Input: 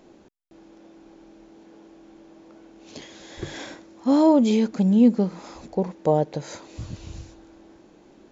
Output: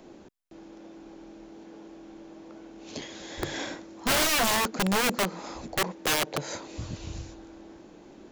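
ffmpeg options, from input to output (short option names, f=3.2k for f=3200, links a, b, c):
-filter_complex "[0:a]acrossover=split=280|1100|1300[a][b][c][d];[a]acompressor=threshold=-36dB:ratio=5[e];[e][b][c][d]amix=inputs=4:normalize=0,aeval=exprs='(mod(12.6*val(0)+1,2)-1)/12.6':c=same,volume=2.5dB"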